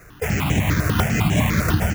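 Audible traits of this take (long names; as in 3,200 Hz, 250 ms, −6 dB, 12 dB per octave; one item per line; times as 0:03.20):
aliases and images of a low sample rate 4,500 Hz, jitter 0%
notches that jump at a steady rate 10 Hz 860–4,600 Hz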